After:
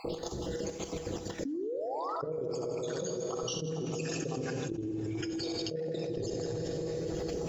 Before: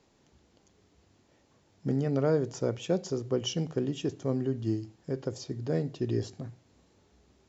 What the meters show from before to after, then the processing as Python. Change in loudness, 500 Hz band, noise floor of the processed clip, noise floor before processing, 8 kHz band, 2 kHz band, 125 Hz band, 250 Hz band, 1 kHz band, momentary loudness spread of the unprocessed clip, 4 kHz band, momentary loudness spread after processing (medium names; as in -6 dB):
-4.0 dB, -1.5 dB, -42 dBFS, -67 dBFS, no reading, +2.5 dB, -6.0 dB, -3.5 dB, +5.0 dB, 10 LU, +0.5 dB, 3 LU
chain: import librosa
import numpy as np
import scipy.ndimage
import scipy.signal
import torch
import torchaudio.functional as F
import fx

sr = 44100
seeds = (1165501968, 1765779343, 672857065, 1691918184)

y = fx.spec_dropout(x, sr, seeds[0], share_pct=66)
y = fx.auto_swell(y, sr, attack_ms=106.0)
y = fx.spec_paint(y, sr, seeds[1], shape='rise', start_s=1.45, length_s=0.71, low_hz=260.0, high_hz=1400.0, level_db=-40.0)
y = fx.peak_eq(y, sr, hz=1100.0, db=-4.0, octaves=1.6)
y = y + 0.4 * np.pad(y, (int(6.1 * sr / 1000.0), 0))[:len(y)]
y = fx.echo_multitap(y, sr, ms=(65, 158), db=(-9.0, -7.5))
y = fx.level_steps(y, sr, step_db=12)
y = fx.peak_eq(y, sr, hz=470.0, db=11.0, octaves=0.89)
y = fx.comb_fb(y, sr, f0_hz=160.0, decay_s=0.93, harmonics='odd', damping=0.0, mix_pct=60)
y = fx.rev_plate(y, sr, seeds[2], rt60_s=3.9, hf_ratio=0.85, predelay_ms=0, drr_db=8.0)
y = fx.env_flatten(y, sr, amount_pct=100)